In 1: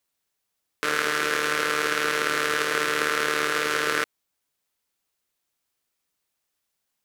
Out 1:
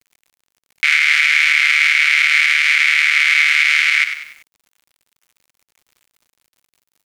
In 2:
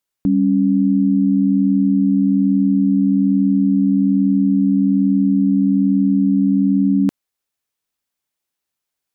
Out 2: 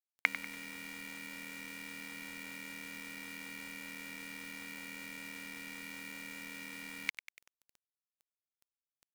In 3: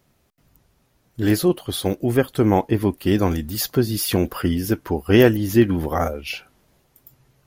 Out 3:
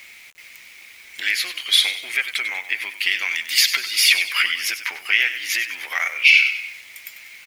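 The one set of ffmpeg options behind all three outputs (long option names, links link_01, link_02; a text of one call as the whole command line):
ffmpeg -i in.wav -filter_complex "[0:a]aeval=exprs='if(lt(val(0),0),0.708*val(0),val(0))':channel_layout=same,lowpass=4400,aemphasis=mode=production:type=75fm,acompressor=threshold=-31dB:ratio=16,asplit=2[link_01][link_02];[link_02]asplit=4[link_03][link_04][link_05][link_06];[link_03]adelay=96,afreqshift=-38,volume=-11.5dB[link_07];[link_04]adelay=192,afreqshift=-76,volume=-18.8dB[link_08];[link_05]adelay=288,afreqshift=-114,volume=-26.2dB[link_09];[link_06]adelay=384,afreqshift=-152,volume=-33.5dB[link_10];[link_07][link_08][link_09][link_10]amix=inputs=4:normalize=0[link_11];[link_01][link_11]amix=inputs=2:normalize=0,asoftclip=type=tanh:threshold=-9.5dB,aeval=exprs='val(0)+0.00112*(sin(2*PI*50*n/s)+sin(2*PI*2*50*n/s)/2+sin(2*PI*3*50*n/s)/3+sin(2*PI*4*50*n/s)/4+sin(2*PI*5*50*n/s)/5)':channel_layout=same,highpass=frequency=2200:width_type=q:width=10,acrusher=bits=10:mix=0:aa=0.000001,alimiter=level_in=18.5dB:limit=-1dB:release=50:level=0:latency=1,volume=-1dB" out.wav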